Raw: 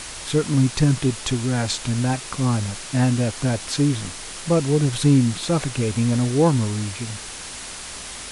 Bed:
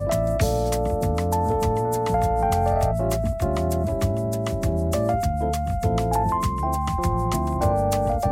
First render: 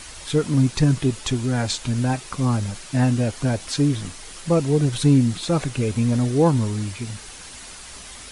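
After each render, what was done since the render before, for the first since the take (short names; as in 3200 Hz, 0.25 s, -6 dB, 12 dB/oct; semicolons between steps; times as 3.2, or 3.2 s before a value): denoiser 7 dB, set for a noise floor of -35 dBFS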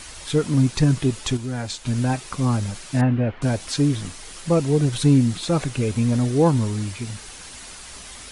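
1.37–1.86 gain -5.5 dB; 3.01–3.42 LPF 2600 Hz 24 dB/oct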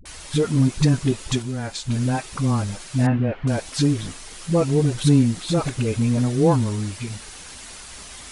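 dispersion highs, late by 55 ms, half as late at 360 Hz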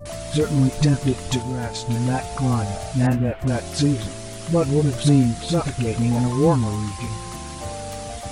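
add bed -11 dB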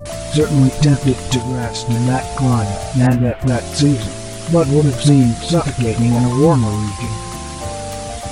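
gain +6 dB; limiter -2 dBFS, peak gain reduction 2.5 dB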